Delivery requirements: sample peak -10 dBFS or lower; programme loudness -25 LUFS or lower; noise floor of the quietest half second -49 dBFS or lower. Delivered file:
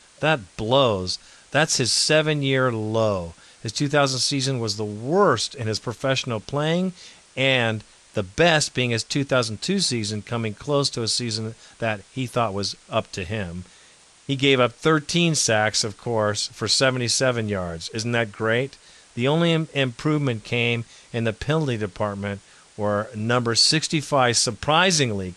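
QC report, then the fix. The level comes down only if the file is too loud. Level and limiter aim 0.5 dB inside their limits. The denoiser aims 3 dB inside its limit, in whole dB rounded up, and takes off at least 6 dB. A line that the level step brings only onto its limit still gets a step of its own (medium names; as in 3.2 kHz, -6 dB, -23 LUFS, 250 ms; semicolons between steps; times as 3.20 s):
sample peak -5.5 dBFS: fail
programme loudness -22.0 LUFS: fail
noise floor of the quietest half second -52 dBFS: pass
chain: trim -3.5 dB; peak limiter -10.5 dBFS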